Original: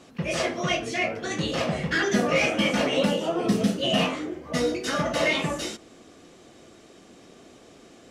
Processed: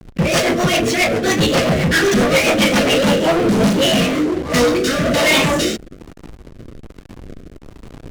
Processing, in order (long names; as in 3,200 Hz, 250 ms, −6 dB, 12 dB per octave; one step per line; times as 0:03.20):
leveller curve on the samples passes 5
slack as between gear wheels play −22.5 dBFS
rotating-speaker cabinet horn 7.5 Hz, later 1.2 Hz, at 0:02.72
level +2 dB